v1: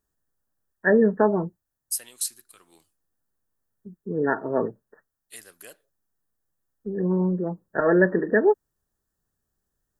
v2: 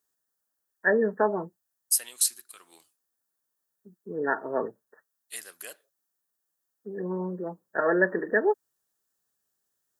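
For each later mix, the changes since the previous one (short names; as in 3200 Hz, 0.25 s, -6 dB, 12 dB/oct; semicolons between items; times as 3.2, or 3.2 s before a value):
second voice +4.5 dB; master: add HPF 640 Hz 6 dB/oct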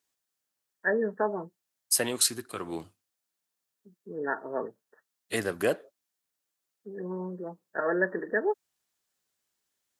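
first voice -4.0 dB; second voice: remove differentiator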